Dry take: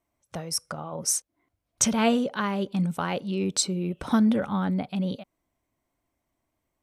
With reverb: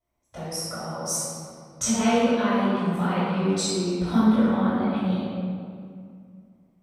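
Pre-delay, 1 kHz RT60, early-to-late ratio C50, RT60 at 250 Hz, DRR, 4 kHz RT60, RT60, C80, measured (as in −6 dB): 3 ms, 2.1 s, −5.0 dB, 2.6 s, −15.5 dB, 1.4 s, 2.2 s, −2.0 dB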